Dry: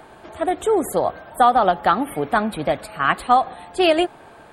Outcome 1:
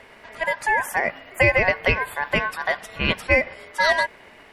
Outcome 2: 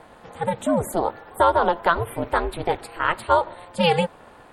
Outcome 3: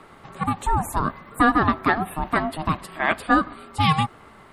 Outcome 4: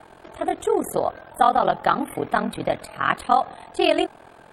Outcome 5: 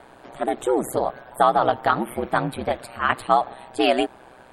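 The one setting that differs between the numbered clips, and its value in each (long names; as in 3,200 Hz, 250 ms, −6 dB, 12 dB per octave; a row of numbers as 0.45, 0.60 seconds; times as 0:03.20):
ring modulation, frequency: 1,300, 170, 470, 21, 63 Hertz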